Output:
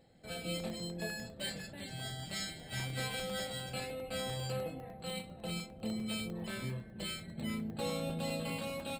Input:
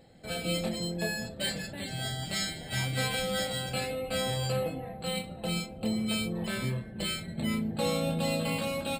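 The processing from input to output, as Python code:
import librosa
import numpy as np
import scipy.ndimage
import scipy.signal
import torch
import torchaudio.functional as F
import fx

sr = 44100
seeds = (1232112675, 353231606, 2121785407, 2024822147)

y = fx.buffer_crackle(x, sr, first_s=0.6, period_s=0.1, block=64, kind='zero')
y = F.gain(torch.from_numpy(y), -7.5).numpy()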